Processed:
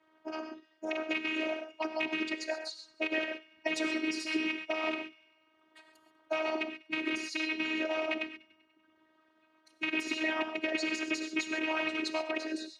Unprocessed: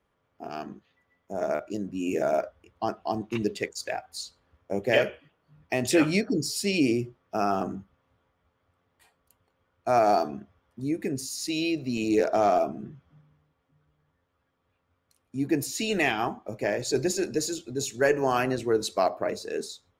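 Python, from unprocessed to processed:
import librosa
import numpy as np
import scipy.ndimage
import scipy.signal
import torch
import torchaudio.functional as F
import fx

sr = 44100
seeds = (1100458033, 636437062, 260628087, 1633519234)

p1 = fx.rattle_buzz(x, sr, strikes_db=-33.0, level_db=-15.0)
p2 = fx.over_compress(p1, sr, threshold_db=-28.0, ratio=-0.5)
p3 = p1 + (p2 * librosa.db_to_amplitude(-2.5))
p4 = p3 + 0.91 * np.pad(p3, (int(2.7 * sr / 1000.0), 0))[:len(p3)]
p5 = fx.rev_gated(p4, sr, seeds[0], gate_ms=240, shape='flat', drr_db=2.0)
p6 = fx.hpss(p5, sr, part='harmonic', gain_db=-18)
p7 = fx.stretch_vocoder(p6, sr, factor=0.64)
p8 = fx.robotise(p7, sr, hz=315.0)
p9 = fx.bandpass_edges(p8, sr, low_hz=180.0, high_hz=3900.0)
p10 = p9 + fx.echo_wet_highpass(p9, sr, ms=97, feedback_pct=53, hz=1800.0, wet_db=-21, dry=0)
p11 = fx.band_squash(p10, sr, depth_pct=40)
y = p11 * librosa.db_to_amplitude(-3.0)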